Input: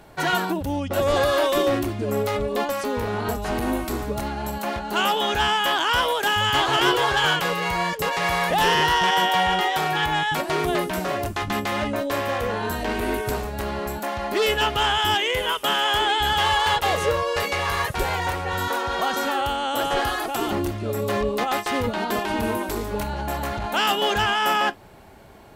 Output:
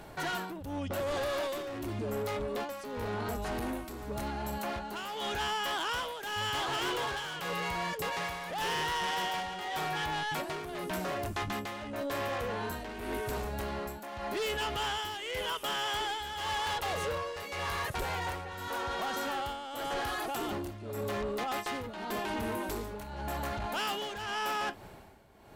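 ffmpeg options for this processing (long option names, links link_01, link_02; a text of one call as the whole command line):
ffmpeg -i in.wav -af "asoftclip=type=tanh:threshold=-23dB,tremolo=f=0.89:d=0.79,alimiter=level_in=6dB:limit=-24dB:level=0:latency=1:release=156,volume=-6dB" out.wav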